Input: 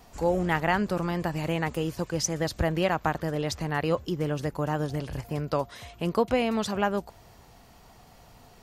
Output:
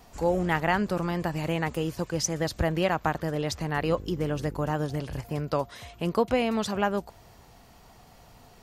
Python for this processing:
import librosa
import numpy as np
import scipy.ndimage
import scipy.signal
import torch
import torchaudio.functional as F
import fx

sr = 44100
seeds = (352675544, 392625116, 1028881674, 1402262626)

y = fx.dmg_buzz(x, sr, base_hz=50.0, harmonics=10, level_db=-41.0, tilt_db=-4, odd_only=False, at=(3.75, 4.7), fade=0.02)